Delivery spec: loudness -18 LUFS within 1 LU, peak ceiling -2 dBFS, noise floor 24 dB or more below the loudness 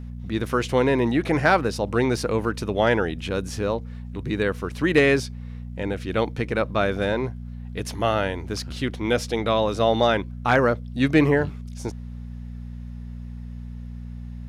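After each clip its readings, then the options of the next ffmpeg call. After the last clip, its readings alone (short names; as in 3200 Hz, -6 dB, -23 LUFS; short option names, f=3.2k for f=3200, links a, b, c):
hum 60 Hz; harmonics up to 240 Hz; hum level -32 dBFS; loudness -23.5 LUFS; peak -7.0 dBFS; loudness target -18.0 LUFS
-> -af "bandreject=f=60:t=h:w=4,bandreject=f=120:t=h:w=4,bandreject=f=180:t=h:w=4,bandreject=f=240:t=h:w=4"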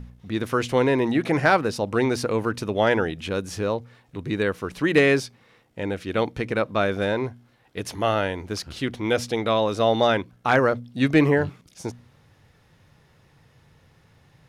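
hum none; loudness -23.5 LUFS; peak -6.5 dBFS; loudness target -18.0 LUFS
-> -af "volume=5.5dB,alimiter=limit=-2dB:level=0:latency=1"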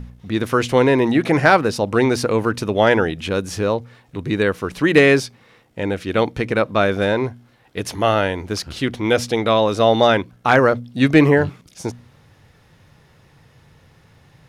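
loudness -18.0 LUFS; peak -2.0 dBFS; noise floor -54 dBFS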